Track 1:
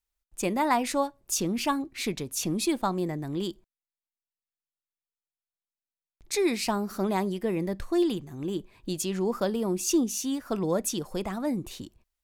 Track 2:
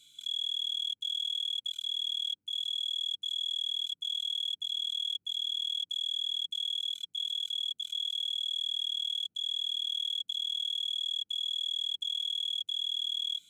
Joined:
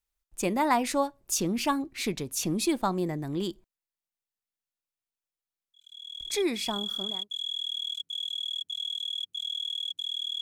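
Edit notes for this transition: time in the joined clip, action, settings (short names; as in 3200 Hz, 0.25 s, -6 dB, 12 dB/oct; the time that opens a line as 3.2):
track 1
6.5 switch to track 2 from 2.42 s, crossfade 1.56 s equal-power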